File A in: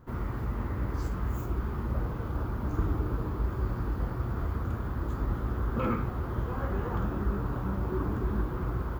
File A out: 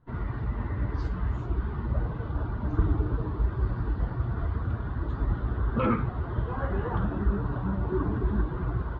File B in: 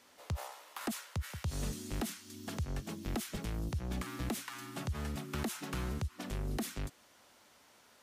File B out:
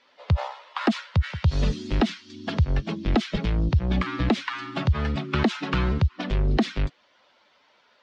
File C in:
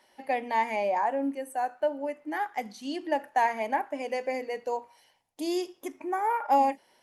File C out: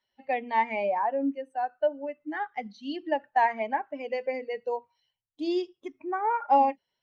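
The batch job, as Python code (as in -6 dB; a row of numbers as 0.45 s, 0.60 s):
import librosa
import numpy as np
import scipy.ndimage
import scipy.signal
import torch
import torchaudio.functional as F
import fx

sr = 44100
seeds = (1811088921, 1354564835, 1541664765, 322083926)

y = fx.bin_expand(x, sr, power=1.5)
y = scipy.signal.sosfilt(scipy.signal.butter(4, 4300.0, 'lowpass', fs=sr, output='sos'), y)
y = librosa.util.normalize(y) * 10.0 ** (-12 / 20.0)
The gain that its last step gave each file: +6.0 dB, +17.5 dB, +3.0 dB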